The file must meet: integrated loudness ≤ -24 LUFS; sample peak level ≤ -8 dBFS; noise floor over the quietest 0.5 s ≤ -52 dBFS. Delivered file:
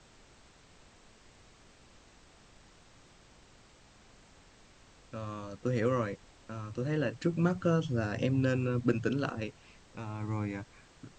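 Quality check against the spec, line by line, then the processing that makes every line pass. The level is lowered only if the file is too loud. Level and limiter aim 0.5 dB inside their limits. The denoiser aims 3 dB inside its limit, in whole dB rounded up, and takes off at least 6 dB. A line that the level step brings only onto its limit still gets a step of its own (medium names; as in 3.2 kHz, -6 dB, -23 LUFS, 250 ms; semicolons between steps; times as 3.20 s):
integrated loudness -33.0 LUFS: pass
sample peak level -14.5 dBFS: pass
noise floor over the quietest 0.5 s -59 dBFS: pass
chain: none needed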